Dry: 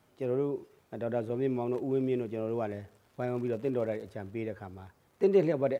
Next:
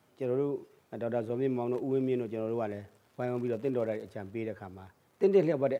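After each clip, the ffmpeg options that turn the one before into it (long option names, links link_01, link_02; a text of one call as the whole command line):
ffmpeg -i in.wav -af "highpass=93" out.wav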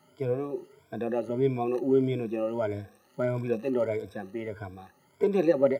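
ffmpeg -i in.wav -af "afftfilt=real='re*pow(10,20/40*sin(2*PI*(1.7*log(max(b,1)*sr/1024/100)/log(2)-(1.6)*(pts-256)/sr)))':imag='im*pow(10,20/40*sin(2*PI*(1.7*log(max(b,1)*sr/1024/100)/log(2)-(1.6)*(pts-256)/sr)))':win_size=1024:overlap=0.75" out.wav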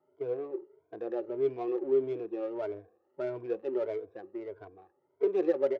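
ffmpeg -i in.wav -af "adynamicsmooth=sensitivity=3.5:basefreq=940,lowshelf=frequency=280:width_type=q:width=3:gain=-8.5,volume=-8dB" out.wav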